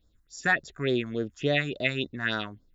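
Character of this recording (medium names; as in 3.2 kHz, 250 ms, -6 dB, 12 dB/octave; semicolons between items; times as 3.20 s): phasing stages 4, 3.5 Hz, lowest notch 460–2600 Hz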